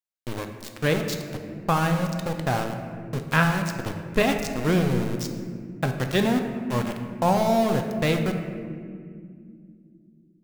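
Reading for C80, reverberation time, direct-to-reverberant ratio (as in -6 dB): 7.5 dB, no single decay rate, 4.5 dB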